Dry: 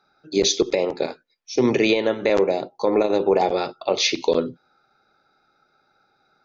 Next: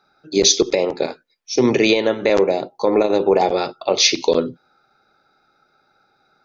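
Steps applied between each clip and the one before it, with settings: dynamic EQ 5500 Hz, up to +6 dB, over -38 dBFS, Q 1.6; gain +3 dB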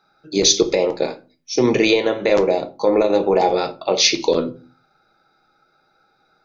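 shoebox room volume 140 m³, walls furnished, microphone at 0.62 m; gain -1 dB

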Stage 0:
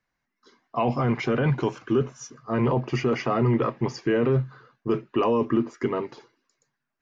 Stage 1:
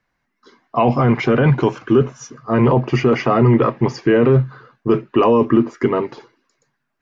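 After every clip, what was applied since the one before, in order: high shelf 5300 Hz -9 dB; gain +9 dB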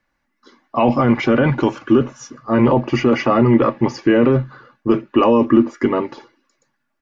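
comb 3.5 ms, depth 45%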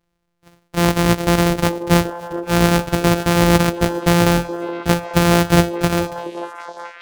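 sample sorter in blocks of 256 samples; delay with a stepping band-pass 0.422 s, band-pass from 430 Hz, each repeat 0.7 oct, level -6 dB; gain -1 dB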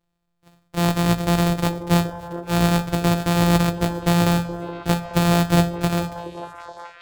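reverb RT60 0.65 s, pre-delay 6 ms, DRR 9 dB; gain -5.5 dB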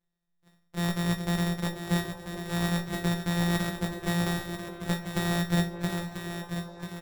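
resonator 190 Hz, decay 0.23 s, harmonics all, mix 90%; on a send: feedback echo 0.99 s, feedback 24%, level -8.5 dB; on the sum: gain +2 dB

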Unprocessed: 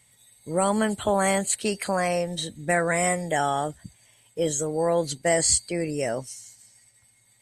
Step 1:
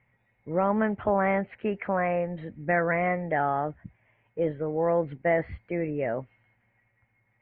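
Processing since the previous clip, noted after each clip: steep low-pass 2400 Hz 48 dB/oct; gain -1.5 dB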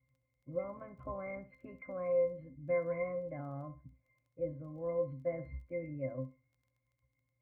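octave resonator C, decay 0.21 s; crackle 13/s -63 dBFS; flutter echo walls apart 11.3 m, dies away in 0.27 s; gain +1 dB

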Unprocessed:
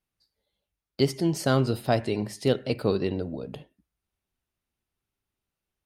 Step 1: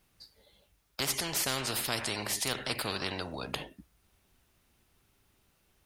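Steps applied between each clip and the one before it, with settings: spectral compressor 4:1; gain -5.5 dB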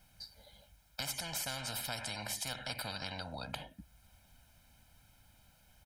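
compressor 2:1, threshold -50 dBFS, peak gain reduction 12.5 dB; comb 1.3 ms, depth 88%; gain +2 dB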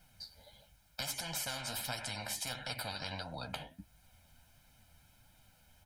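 flange 1.5 Hz, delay 5.4 ms, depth 8.7 ms, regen +42%; gain +4 dB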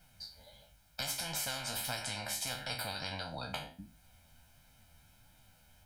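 spectral trails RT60 0.36 s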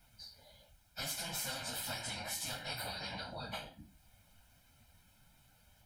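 phase scrambler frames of 50 ms; gain -2.5 dB

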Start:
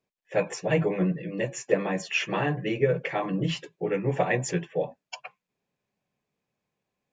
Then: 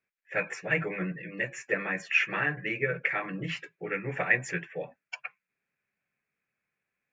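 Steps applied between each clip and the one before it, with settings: band shelf 1800 Hz +14.5 dB 1.2 oct; gain -8.5 dB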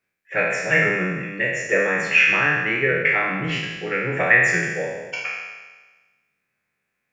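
spectral trails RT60 1.31 s; gain +5.5 dB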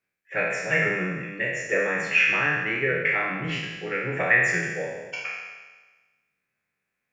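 flange 1.9 Hz, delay 6.1 ms, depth 2 ms, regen -81%

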